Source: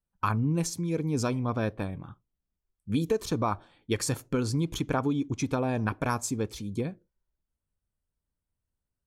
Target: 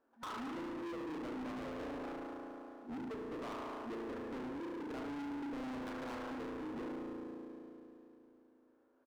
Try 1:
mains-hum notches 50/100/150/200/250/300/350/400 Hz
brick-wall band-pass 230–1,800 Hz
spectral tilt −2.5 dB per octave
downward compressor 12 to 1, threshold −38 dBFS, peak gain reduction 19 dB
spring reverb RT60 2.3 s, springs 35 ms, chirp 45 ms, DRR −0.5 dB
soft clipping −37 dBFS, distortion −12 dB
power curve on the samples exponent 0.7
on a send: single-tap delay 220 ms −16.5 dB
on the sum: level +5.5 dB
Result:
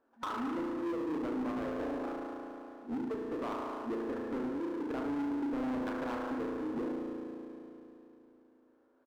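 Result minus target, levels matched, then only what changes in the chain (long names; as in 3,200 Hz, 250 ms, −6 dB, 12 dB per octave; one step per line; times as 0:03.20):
soft clipping: distortion −6 dB
change: soft clipping −46.5 dBFS, distortion −5 dB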